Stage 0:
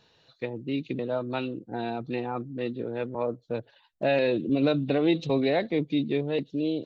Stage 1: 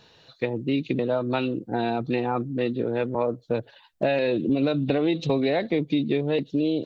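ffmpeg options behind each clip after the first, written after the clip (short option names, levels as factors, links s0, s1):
-af "acompressor=threshold=0.0447:ratio=6,volume=2.37"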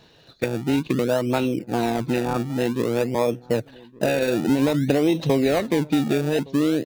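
-filter_complex "[0:a]asplit=2[s0][s1];[s1]acrusher=samples=29:mix=1:aa=0.000001:lfo=1:lforange=29:lforate=0.53,volume=0.562[s2];[s0][s2]amix=inputs=2:normalize=0,asplit=2[s3][s4];[s4]adelay=1166,volume=0.0708,highshelf=f=4000:g=-26.2[s5];[s3][s5]amix=inputs=2:normalize=0"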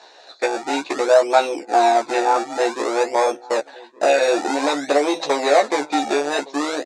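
-filter_complex "[0:a]asplit=2[s0][s1];[s1]aeval=exprs='0.473*sin(PI/2*2.51*val(0)/0.473)':c=same,volume=0.299[s2];[s0][s2]amix=inputs=2:normalize=0,highpass=f=430:w=0.5412,highpass=f=430:w=1.3066,equalizer=f=460:t=q:w=4:g=-6,equalizer=f=770:t=q:w=4:g=6,equalizer=f=3000:t=q:w=4:g=-10,equalizer=f=7300:t=q:w=4:g=3,lowpass=f=8100:w=0.5412,lowpass=f=8100:w=1.3066,asplit=2[s3][s4];[s4]adelay=14,volume=0.708[s5];[s3][s5]amix=inputs=2:normalize=0,volume=1.19"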